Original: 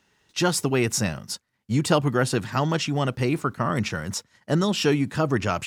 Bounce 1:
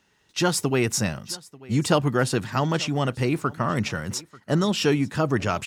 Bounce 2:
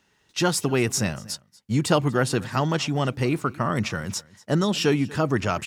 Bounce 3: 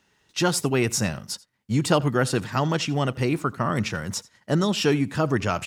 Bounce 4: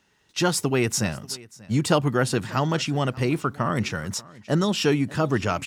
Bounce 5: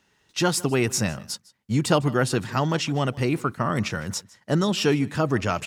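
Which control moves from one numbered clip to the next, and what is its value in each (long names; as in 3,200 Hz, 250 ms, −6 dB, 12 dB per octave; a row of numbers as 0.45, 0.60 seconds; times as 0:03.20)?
single-tap delay, delay time: 889, 238, 84, 587, 155 milliseconds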